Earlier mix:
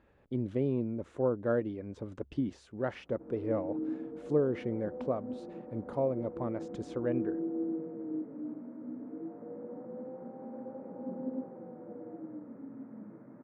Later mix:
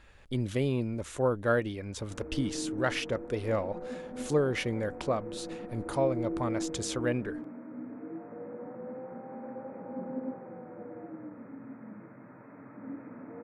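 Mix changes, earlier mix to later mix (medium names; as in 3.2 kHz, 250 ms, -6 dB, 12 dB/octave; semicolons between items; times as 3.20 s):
background: entry -1.10 s; master: remove band-pass filter 300 Hz, Q 0.69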